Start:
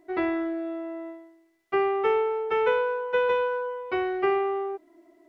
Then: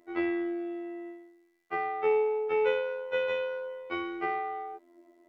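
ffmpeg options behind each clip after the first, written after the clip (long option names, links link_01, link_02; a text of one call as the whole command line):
ffmpeg -i in.wav -af "afftfilt=real='hypot(re,im)*cos(PI*b)':imag='0':win_size=2048:overlap=0.75,equalizer=frequency=84:width_type=o:width=0.4:gain=-4.5" out.wav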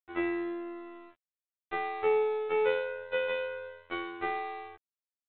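ffmpeg -i in.wav -af "afftfilt=real='re*gte(hypot(re,im),0.00562)':imag='im*gte(hypot(re,im),0.00562)':win_size=1024:overlap=0.75,aresample=8000,aeval=exprs='sgn(val(0))*max(abs(val(0))-0.00794,0)':channel_layout=same,aresample=44100" out.wav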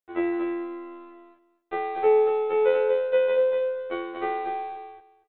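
ffmpeg -i in.wav -filter_complex "[0:a]equalizer=frequency=490:width_type=o:width=1.8:gain=10.5,asplit=2[link_01][link_02];[link_02]aecho=0:1:236|472|708:0.596|0.0953|0.0152[link_03];[link_01][link_03]amix=inputs=2:normalize=0,volume=-2dB" out.wav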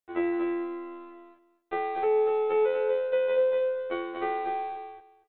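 ffmpeg -i in.wav -af "alimiter=limit=-16.5dB:level=0:latency=1:release=426" out.wav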